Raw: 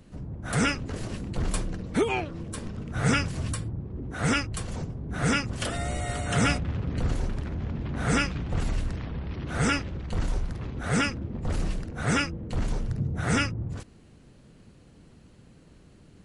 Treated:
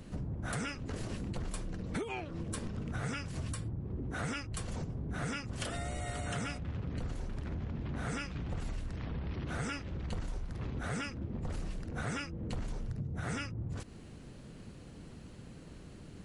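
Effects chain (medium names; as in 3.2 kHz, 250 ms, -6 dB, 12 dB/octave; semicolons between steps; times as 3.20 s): compression 10:1, threshold -38 dBFS, peak gain reduction 19.5 dB; trim +3.5 dB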